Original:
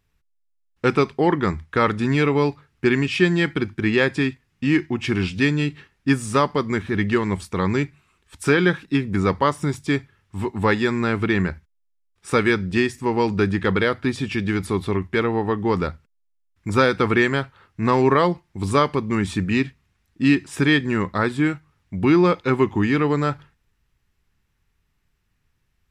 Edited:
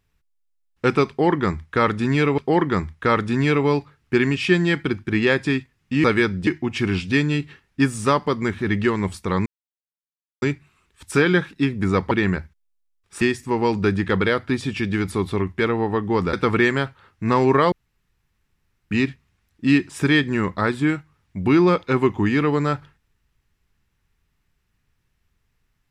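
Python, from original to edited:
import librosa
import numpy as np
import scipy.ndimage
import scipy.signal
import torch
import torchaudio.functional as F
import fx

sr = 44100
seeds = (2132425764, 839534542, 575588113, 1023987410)

y = fx.edit(x, sr, fx.repeat(start_s=1.09, length_s=1.29, count=2),
    fx.insert_silence(at_s=7.74, length_s=0.96),
    fx.cut(start_s=9.43, length_s=1.8),
    fx.move(start_s=12.33, length_s=0.43, to_s=4.75),
    fx.cut(start_s=15.88, length_s=1.02),
    fx.room_tone_fill(start_s=18.29, length_s=1.19), tone=tone)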